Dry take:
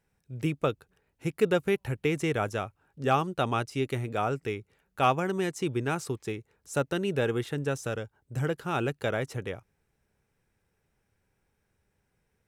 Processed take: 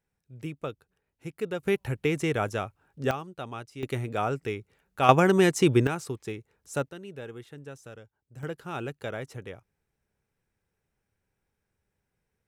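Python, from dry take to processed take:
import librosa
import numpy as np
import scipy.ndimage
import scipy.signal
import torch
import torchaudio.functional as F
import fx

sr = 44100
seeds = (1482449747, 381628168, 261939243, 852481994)

y = fx.gain(x, sr, db=fx.steps((0.0, -7.5), (1.63, 1.0), (3.11, -10.0), (3.83, 0.5), (5.09, 9.0), (5.87, -1.5), (6.89, -13.0), (8.43, -5.5)))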